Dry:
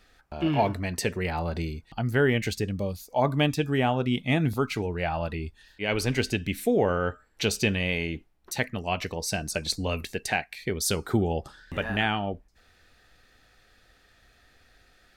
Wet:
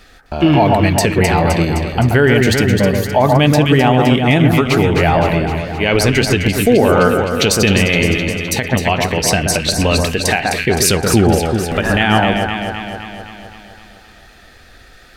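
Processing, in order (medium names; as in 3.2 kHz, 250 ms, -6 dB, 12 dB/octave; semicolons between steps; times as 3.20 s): echo whose repeats swap between lows and highs 129 ms, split 1.7 kHz, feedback 77%, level -5 dB; loudness maximiser +16 dB; endings held to a fixed fall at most 150 dB/s; trim -1 dB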